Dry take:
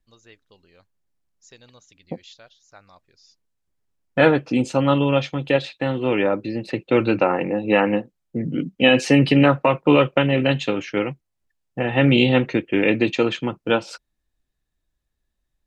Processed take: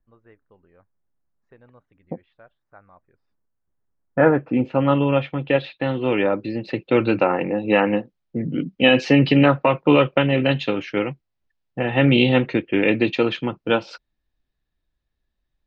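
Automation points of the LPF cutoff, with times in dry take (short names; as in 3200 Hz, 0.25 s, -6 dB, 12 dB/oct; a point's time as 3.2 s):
LPF 24 dB/oct
4.24 s 1700 Hz
4.87 s 2800 Hz
5.42 s 2800 Hz
5.94 s 4900 Hz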